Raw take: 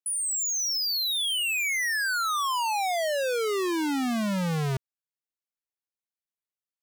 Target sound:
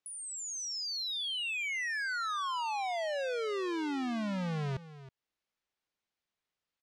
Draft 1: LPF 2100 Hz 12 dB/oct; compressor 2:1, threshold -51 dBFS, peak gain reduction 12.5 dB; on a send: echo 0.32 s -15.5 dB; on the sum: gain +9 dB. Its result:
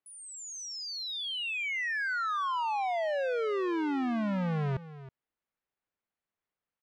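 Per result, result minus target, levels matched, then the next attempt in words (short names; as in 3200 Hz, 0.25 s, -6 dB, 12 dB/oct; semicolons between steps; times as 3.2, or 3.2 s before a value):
compressor: peak gain reduction -4 dB; 4000 Hz band -3.5 dB
LPF 2100 Hz 12 dB/oct; compressor 2:1, threshold -59 dBFS, peak gain reduction 16.5 dB; on a send: echo 0.32 s -15.5 dB; on the sum: gain +9 dB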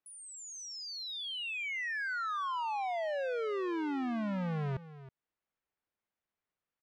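4000 Hz band -3.5 dB
LPF 4600 Hz 12 dB/oct; compressor 2:1, threshold -59 dBFS, peak gain reduction 16.5 dB; on a send: echo 0.32 s -15.5 dB; on the sum: gain +9 dB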